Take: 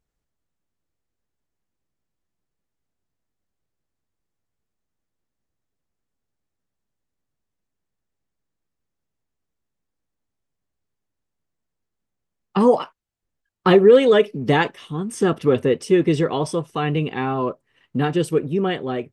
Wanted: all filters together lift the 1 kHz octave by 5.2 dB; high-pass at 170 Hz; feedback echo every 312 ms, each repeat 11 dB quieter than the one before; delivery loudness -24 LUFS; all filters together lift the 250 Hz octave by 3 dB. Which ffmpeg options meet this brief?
-af "highpass=170,equalizer=f=250:t=o:g=5,equalizer=f=1000:t=o:g=6.5,aecho=1:1:312|624|936:0.282|0.0789|0.0221,volume=0.422"

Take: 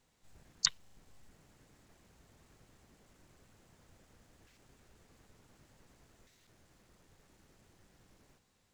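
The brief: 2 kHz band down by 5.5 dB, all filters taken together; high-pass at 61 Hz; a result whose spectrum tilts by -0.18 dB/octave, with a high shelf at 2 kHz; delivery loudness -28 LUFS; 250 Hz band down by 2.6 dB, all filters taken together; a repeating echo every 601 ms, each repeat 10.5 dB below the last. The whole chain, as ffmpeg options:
-af "highpass=61,equalizer=f=250:t=o:g=-3.5,highshelf=f=2000:g=-6,equalizer=f=2000:t=o:g=-3.5,aecho=1:1:601|1202|1803:0.299|0.0896|0.0269,volume=5.62"

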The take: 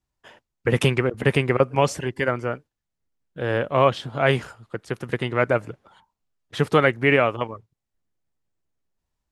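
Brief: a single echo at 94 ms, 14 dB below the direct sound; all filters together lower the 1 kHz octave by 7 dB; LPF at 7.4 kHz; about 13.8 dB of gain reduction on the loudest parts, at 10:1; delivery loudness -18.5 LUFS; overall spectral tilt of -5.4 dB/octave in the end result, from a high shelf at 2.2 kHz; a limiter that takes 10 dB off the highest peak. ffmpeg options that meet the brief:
-af "lowpass=7400,equalizer=f=1000:t=o:g=-8.5,highshelf=f=2200:g=-4.5,acompressor=threshold=0.0355:ratio=10,alimiter=level_in=1.19:limit=0.0631:level=0:latency=1,volume=0.841,aecho=1:1:94:0.2,volume=10.6"

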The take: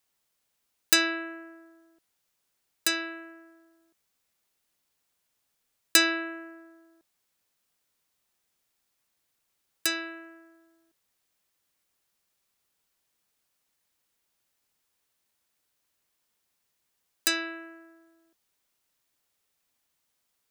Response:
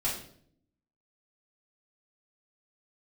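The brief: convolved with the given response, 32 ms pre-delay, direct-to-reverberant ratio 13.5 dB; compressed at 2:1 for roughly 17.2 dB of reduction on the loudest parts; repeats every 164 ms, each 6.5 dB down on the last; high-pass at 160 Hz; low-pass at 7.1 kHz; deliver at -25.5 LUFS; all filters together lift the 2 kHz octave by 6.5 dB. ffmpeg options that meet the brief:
-filter_complex "[0:a]highpass=160,lowpass=7100,equalizer=f=2000:t=o:g=8.5,acompressor=threshold=0.00447:ratio=2,aecho=1:1:164|328|492|656|820|984:0.473|0.222|0.105|0.0491|0.0231|0.0109,asplit=2[s0][s1];[1:a]atrim=start_sample=2205,adelay=32[s2];[s1][s2]afir=irnorm=-1:irlink=0,volume=0.1[s3];[s0][s3]amix=inputs=2:normalize=0,volume=5.62"

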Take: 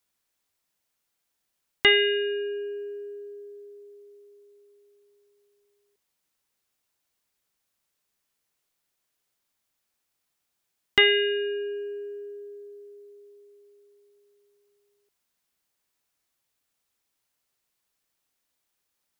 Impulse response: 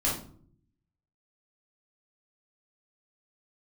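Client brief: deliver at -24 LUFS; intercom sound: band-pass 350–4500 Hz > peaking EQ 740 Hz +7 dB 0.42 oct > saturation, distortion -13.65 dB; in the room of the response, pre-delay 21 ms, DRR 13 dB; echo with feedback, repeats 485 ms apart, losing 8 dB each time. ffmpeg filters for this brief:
-filter_complex "[0:a]aecho=1:1:485|970|1455|1940|2425:0.398|0.159|0.0637|0.0255|0.0102,asplit=2[s0][s1];[1:a]atrim=start_sample=2205,adelay=21[s2];[s1][s2]afir=irnorm=-1:irlink=0,volume=0.0841[s3];[s0][s3]amix=inputs=2:normalize=0,highpass=350,lowpass=4500,equalizer=f=740:t=o:w=0.42:g=7,asoftclip=threshold=0.224,volume=1.26"

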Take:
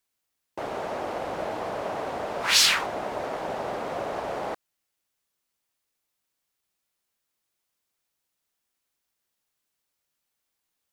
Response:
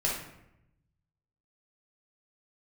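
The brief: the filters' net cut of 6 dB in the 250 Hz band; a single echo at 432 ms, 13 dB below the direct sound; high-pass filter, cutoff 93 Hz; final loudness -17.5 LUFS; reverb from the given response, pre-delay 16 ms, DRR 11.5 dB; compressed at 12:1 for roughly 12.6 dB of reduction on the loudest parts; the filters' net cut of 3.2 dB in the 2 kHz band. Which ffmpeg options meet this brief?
-filter_complex "[0:a]highpass=93,equalizer=f=250:t=o:g=-8.5,equalizer=f=2000:t=o:g=-4,acompressor=threshold=0.0398:ratio=12,aecho=1:1:432:0.224,asplit=2[s0][s1];[1:a]atrim=start_sample=2205,adelay=16[s2];[s1][s2]afir=irnorm=-1:irlink=0,volume=0.106[s3];[s0][s3]amix=inputs=2:normalize=0,volume=6.31"

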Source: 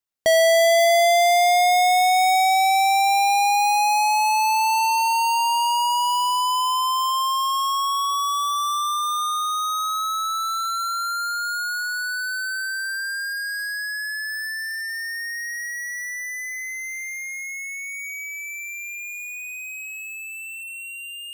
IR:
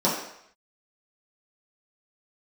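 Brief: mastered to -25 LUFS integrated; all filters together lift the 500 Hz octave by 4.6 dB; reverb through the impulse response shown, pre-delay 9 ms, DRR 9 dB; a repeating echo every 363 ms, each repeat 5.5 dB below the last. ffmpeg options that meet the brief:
-filter_complex "[0:a]equalizer=f=500:t=o:g=8,aecho=1:1:363|726|1089|1452|1815|2178|2541:0.531|0.281|0.149|0.079|0.0419|0.0222|0.0118,asplit=2[s0][s1];[1:a]atrim=start_sample=2205,adelay=9[s2];[s1][s2]afir=irnorm=-1:irlink=0,volume=0.0631[s3];[s0][s3]amix=inputs=2:normalize=0,volume=0.355"

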